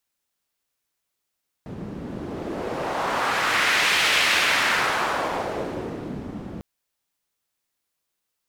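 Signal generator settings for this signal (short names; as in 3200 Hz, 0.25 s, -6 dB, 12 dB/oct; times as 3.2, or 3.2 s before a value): wind-like swept noise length 4.95 s, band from 200 Hz, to 2400 Hz, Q 1.3, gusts 1, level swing 14.5 dB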